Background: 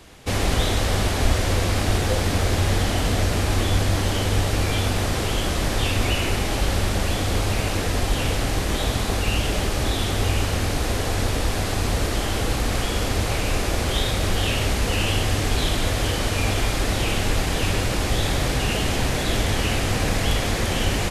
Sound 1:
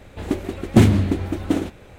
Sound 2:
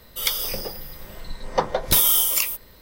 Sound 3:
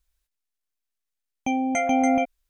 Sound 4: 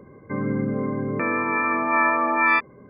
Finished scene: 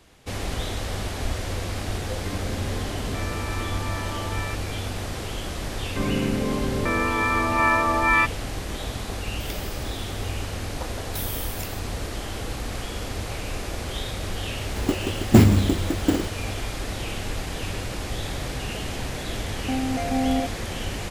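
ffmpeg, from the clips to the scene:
ffmpeg -i bed.wav -i cue0.wav -i cue1.wav -i cue2.wav -i cue3.wav -filter_complex "[4:a]asplit=2[link_01][link_02];[0:a]volume=-8dB[link_03];[link_01]acompressor=threshold=-24dB:ratio=6:attack=3.2:release=140:knee=1:detection=peak[link_04];[1:a]acrusher=samples=6:mix=1:aa=0.000001[link_05];[3:a]tiltshelf=frequency=920:gain=8[link_06];[link_04]atrim=end=2.89,asetpts=PTS-STARTPTS,volume=-7.5dB,afade=type=in:duration=0.004:curve=hsin,afade=type=out:start_time=2.886:duration=0.004:curve=hsin,adelay=1950[link_07];[link_02]atrim=end=2.89,asetpts=PTS-STARTPTS,volume=-0.5dB,afade=type=in:duration=0.004:curve=hsin,afade=type=out:start_time=2.886:duration=0.004:curve=hsin,adelay=5660[link_08];[2:a]atrim=end=2.81,asetpts=PTS-STARTPTS,volume=-16.5dB,afade=type=in:duration=0.004:curve=hsin,afade=type=out:start_time=2.806:duration=0.004:curve=hsin,adelay=9230[link_09];[link_05]atrim=end=1.98,asetpts=PTS-STARTPTS,volume=-1dB,afade=type=in:duration=0.004:curve=hsin,afade=type=out:start_time=1.976:duration=0.004:curve=hsin,adelay=14580[link_10];[link_06]atrim=end=2.49,asetpts=PTS-STARTPTS,volume=-8dB,afade=type=in:duration=0.004:curve=hsin,afade=type=out:start_time=2.486:duration=0.004:curve=hsin,adelay=18220[link_11];[link_03][link_07][link_08][link_09][link_10][link_11]amix=inputs=6:normalize=0" out.wav

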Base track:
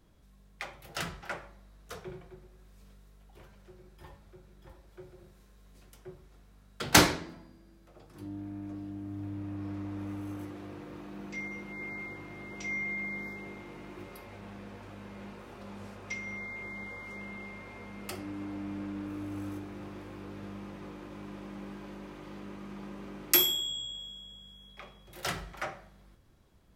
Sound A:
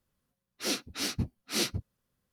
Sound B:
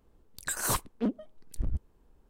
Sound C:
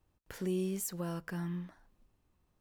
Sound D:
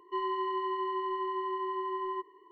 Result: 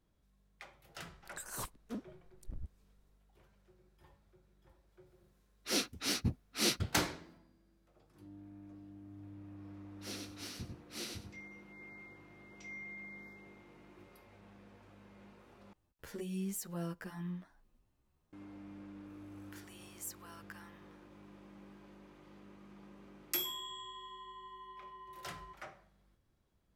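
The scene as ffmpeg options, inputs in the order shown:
ffmpeg -i bed.wav -i cue0.wav -i cue1.wav -i cue2.wav -i cue3.wav -filter_complex "[1:a]asplit=2[link_01][link_02];[3:a]asplit=2[link_03][link_04];[0:a]volume=-12.5dB[link_05];[link_02]aecho=1:1:95|190|285:0.631|0.126|0.0252[link_06];[link_03]asplit=2[link_07][link_08];[link_08]adelay=10,afreqshift=2[link_09];[link_07][link_09]amix=inputs=2:normalize=1[link_10];[link_04]highpass=frequency=890:width=0.5412,highpass=frequency=890:width=1.3066[link_11];[4:a]equalizer=frequency=410:width_type=o:width=0.5:gain=-14[link_12];[link_05]asplit=2[link_13][link_14];[link_13]atrim=end=15.734[link_15];[link_10]atrim=end=2.6,asetpts=PTS-STARTPTS,volume=-0.5dB[link_16];[link_14]atrim=start=18.326[link_17];[2:a]atrim=end=2.29,asetpts=PTS-STARTPTS,volume=-13.5dB,afade=type=in:duration=0.004:curve=hsin,afade=type=out:start_time=2.286:duration=0.004:curve=hsin,adelay=890[link_18];[link_01]atrim=end=2.32,asetpts=PTS-STARTPTS,volume=-2dB,afade=type=in:duration=0.004:curve=hsin,afade=type=out:start_time=2.316:duration=0.004:curve=hsin,adelay=5060[link_19];[link_06]atrim=end=2.32,asetpts=PTS-STARTPTS,volume=-14.5dB,afade=type=in:duration=0.004:curve=hsin,afade=type=out:start_time=2.316:duration=0.004:curve=hsin,adelay=9410[link_20];[link_11]atrim=end=2.6,asetpts=PTS-STARTPTS,volume=-5.5dB,afade=type=in:duration=0.004:curve=hsin,afade=type=out:start_time=2.596:duration=0.004:curve=hsin,adelay=19220[link_21];[link_12]atrim=end=2.51,asetpts=PTS-STARTPTS,volume=-15.5dB,afade=type=in:duration=0.004:curve=hsin,afade=type=out:start_time=2.506:duration=0.004:curve=hsin,adelay=23320[link_22];[link_15][link_16]acrossfade=duration=0.004:curve1=hsin:curve2=hsin[link_23];[link_23][link_17]acrossfade=duration=0.004:curve1=hsin:curve2=hsin[link_24];[link_24][link_18][link_19][link_20][link_21][link_22]amix=inputs=6:normalize=0" out.wav

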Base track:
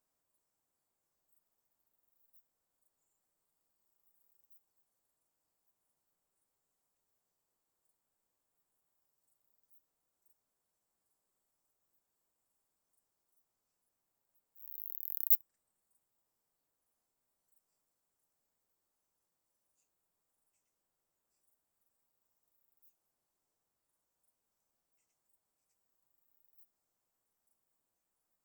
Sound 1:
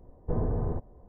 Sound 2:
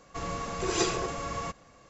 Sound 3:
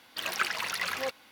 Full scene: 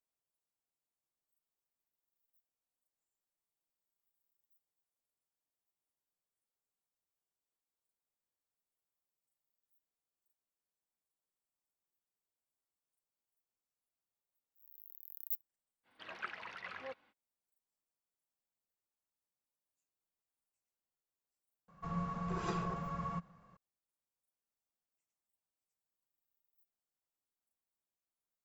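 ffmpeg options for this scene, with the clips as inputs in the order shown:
ffmpeg -i bed.wav -i cue0.wav -i cue1.wav -i cue2.wav -filter_complex "[0:a]volume=-12dB[link_01];[3:a]lowpass=2300[link_02];[2:a]firequalizer=gain_entry='entry(120,0);entry(170,15);entry(260,-6);entry(400,-5);entry(1100,4);entry(2100,-6);entry(6500,-16)':delay=0.05:min_phase=1[link_03];[link_02]atrim=end=1.31,asetpts=PTS-STARTPTS,volume=-12.5dB,afade=type=in:duration=0.05,afade=type=out:start_time=1.26:duration=0.05,adelay=15830[link_04];[link_03]atrim=end=1.89,asetpts=PTS-STARTPTS,volume=-9dB,afade=type=in:duration=0.004:curve=hsin,afade=type=out:start_time=1.886:duration=0.004:curve=hsin,adelay=21680[link_05];[link_01][link_04][link_05]amix=inputs=3:normalize=0" out.wav

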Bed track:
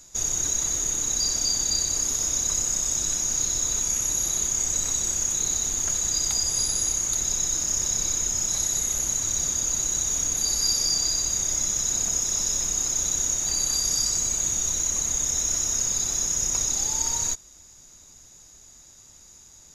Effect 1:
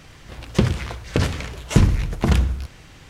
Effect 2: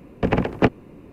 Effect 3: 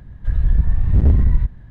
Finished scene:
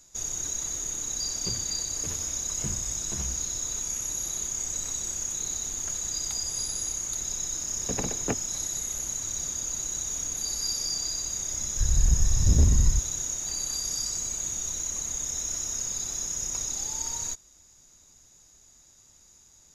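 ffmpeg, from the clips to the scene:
ffmpeg -i bed.wav -i cue0.wav -i cue1.wav -i cue2.wav -filter_complex "[0:a]volume=-6.5dB[link_01];[1:a]asplit=2[link_02][link_03];[link_03]adelay=11.8,afreqshift=-2.2[link_04];[link_02][link_04]amix=inputs=2:normalize=1,atrim=end=3.09,asetpts=PTS-STARTPTS,volume=-17.5dB,afade=type=in:duration=0.004:curve=hsin,afade=type=out:start_time=3.086:duration=0.004:curve=hsin,adelay=880[link_05];[2:a]atrim=end=1.12,asetpts=PTS-STARTPTS,volume=-13dB,afade=type=in:duration=0.004:curve=hsin,afade=type=out:start_time=1.116:duration=0.004:curve=hsin,adelay=7660[link_06];[3:a]atrim=end=1.7,asetpts=PTS-STARTPTS,volume=-6.5dB,afade=type=in:duration=0.004:curve=hsin,afade=type=out:start_time=1.696:duration=0.004:curve=hsin,adelay=11530[link_07];[link_01][link_05][link_06][link_07]amix=inputs=4:normalize=0" out.wav

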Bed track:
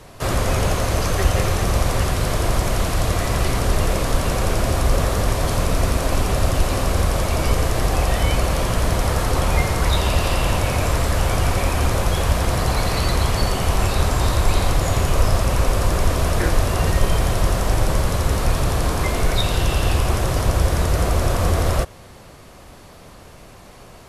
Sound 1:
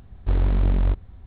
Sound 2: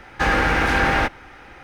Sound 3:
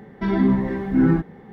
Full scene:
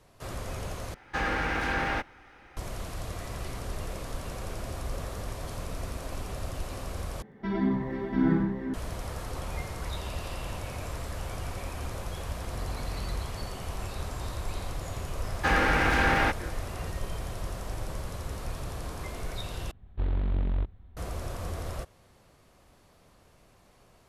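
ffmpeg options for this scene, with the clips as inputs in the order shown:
ffmpeg -i bed.wav -i cue0.wav -i cue1.wav -i cue2.wav -filter_complex "[2:a]asplit=2[link_01][link_02];[1:a]asplit=2[link_03][link_04];[0:a]volume=-17dB[link_05];[3:a]aecho=1:1:99|492|690:0.398|0.376|0.708[link_06];[link_03]alimiter=limit=-19dB:level=0:latency=1:release=204[link_07];[link_05]asplit=4[link_08][link_09][link_10][link_11];[link_08]atrim=end=0.944[link_12];[link_01]atrim=end=1.63,asetpts=PTS-STARTPTS,volume=-10.5dB[link_13];[link_09]atrim=start=2.566:end=7.224[link_14];[link_06]atrim=end=1.52,asetpts=PTS-STARTPTS,volume=-8.5dB[link_15];[link_10]atrim=start=8.736:end=19.714[link_16];[link_04]atrim=end=1.26,asetpts=PTS-STARTPTS,volume=-8dB[link_17];[link_11]atrim=start=20.966[link_18];[link_07]atrim=end=1.26,asetpts=PTS-STARTPTS,volume=-11dB,afade=type=in:duration=0.004:curve=hsin,afade=type=out:start_time=1.256:duration=0.004:curve=hsin,adelay=12270[link_19];[link_02]atrim=end=1.63,asetpts=PTS-STARTPTS,volume=-5.5dB,afade=type=in:duration=0.004:curve=hsin,afade=type=out:start_time=1.626:duration=0.004:curve=hsin,adelay=672084S[link_20];[link_12][link_13]acrossfade=duration=0.004:curve1=hsin:curve2=hsin[link_21];[link_21][link_14]acrossfade=duration=0.004:curve1=hsin:curve2=hsin[link_22];[link_22][link_15]acrossfade=duration=0.004:curve1=hsin:curve2=hsin[link_23];[link_23][link_16]acrossfade=duration=0.004:curve1=hsin:curve2=hsin[link_24];[link_24][link_17]acrossfade=duration=0.004:curve1=hsin:curve2=hsin[link_25];[link_25][link_18]acrossfade=duration=0.004:curve1=hsin:curve2=hsin[link_26];[link_26][link_19][link_20]amix=inputs=3:normalize=0" out.wav

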